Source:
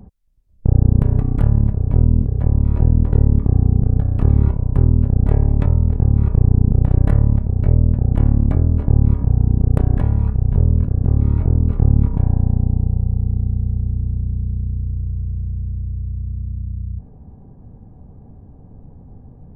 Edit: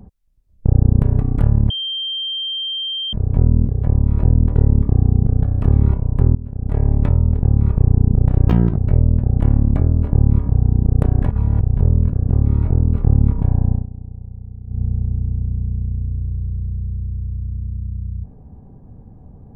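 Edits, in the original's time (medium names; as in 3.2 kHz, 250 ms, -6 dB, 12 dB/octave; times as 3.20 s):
1.70 s: add tone 3.16 kHz -21 dBFS 1.43 s
4.92–5.44 s: fade in quadratic, from -15.5 dB
7.05–7.52 s: speed 163%
10.06–10.35 s: reverse
12.47–13.57 s: dip -14.5 dB, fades 0.15 s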